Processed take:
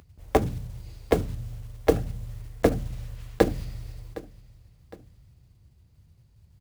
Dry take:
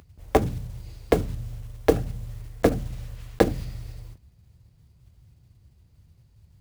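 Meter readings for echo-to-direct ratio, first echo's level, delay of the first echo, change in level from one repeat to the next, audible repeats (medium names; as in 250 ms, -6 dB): -17.5 dB, -18.5 dB, 761 ms, -7.0 dB, 2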